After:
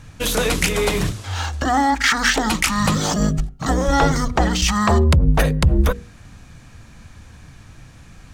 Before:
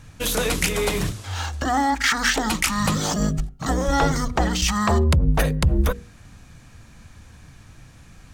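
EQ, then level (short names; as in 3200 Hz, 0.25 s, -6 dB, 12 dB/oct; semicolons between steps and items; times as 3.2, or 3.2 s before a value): high shelf 9500 Hz -5 dB; +3.5 dB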